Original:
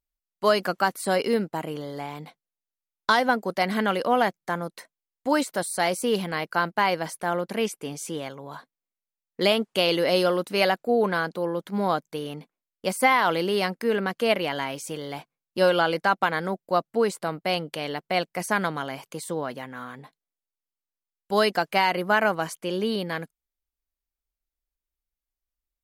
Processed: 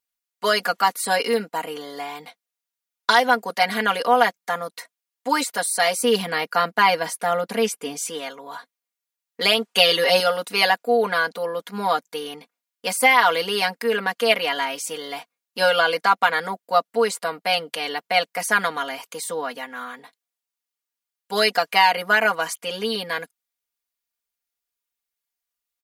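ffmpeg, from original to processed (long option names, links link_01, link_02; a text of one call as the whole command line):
ffmpeg -i in.wav -filter_complex "[0:a]asettb=1/sr,asplit=3[link_01][link_02][link_03];[link_01]atrim=end=5.984[link_04];[link_02]atrim=start=5.98:end=8.02,asetpts=PTS-STARTPTS,afade=type=in:duration=0.004:curve=qsin,afade=type=out:start_time=2.036:duration=0.004:curve=qsin,lowshelf=frequency=360:gain=7.5[link_05];[link_03]atrim=start=8.016[link_06];[link_04][link_05]acrossfade=duration=0.004:curve1=hsin:curve2=qsin[link_07];[link_07][link_06]acrossfade=duration=0.004:curve1=qsin:curve2=hsin,asettb=1/sr,asplit=3[link_08][link_09][link_10];[link_08]atrim=end=9.754[link_11];[link_09]atrim=start=9.75:end=10.2,asetpts=PTS-STARTPTS,afade=type=in:duration=0.004:curve=qsin,afade=type=out:start_time=0.446:duration=0.004:curve=qsin,aecho=1:1:5.3:0.74,atrim=end_sample=19845[link_12];[link_10]atrim=start=10.196[link_13];[link_11][link_12]acrossfade=duration=0.004:curve1=hsin:curve2=qsin[link_14];[link_14][link_13]acrossfade=duration=0.004:curve1=qsin:curve2=hsin,highpass=frequency=960:poles=1,aecho=1:1:4.2:1,volume=4.5dB" out.wav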